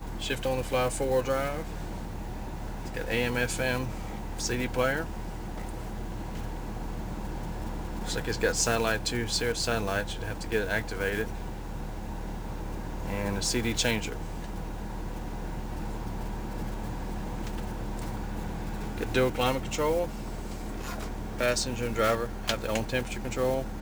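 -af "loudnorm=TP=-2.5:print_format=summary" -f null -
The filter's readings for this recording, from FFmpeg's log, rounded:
Input Integrated:    -31.3 LUFS
Input True Peak:     -10.6 dBTP
Input LRA:             7.5 LU
Input Threshold:     -41.3 LUFS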